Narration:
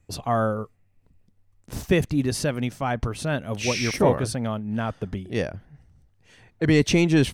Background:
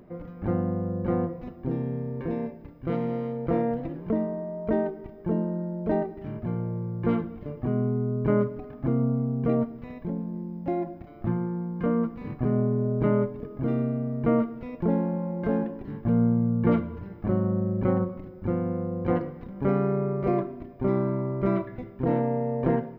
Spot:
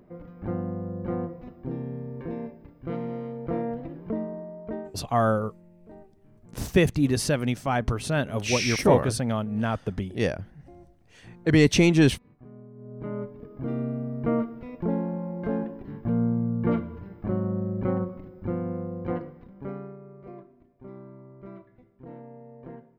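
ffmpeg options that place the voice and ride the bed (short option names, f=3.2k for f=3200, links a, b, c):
-filter_complex "[0:a]adelay=4850,volume=0.5dB[a];[1:a]volume=16dB,afade=t=out:st=4.37:d=0.72:silence=0.11885,afade=t=in:st=12.74:d=1.16:silence=0.1,afade=t=out:st=18.76:d=1.22:silence=0.149624[b];[a][b]amix=inputs=2:normalize=0"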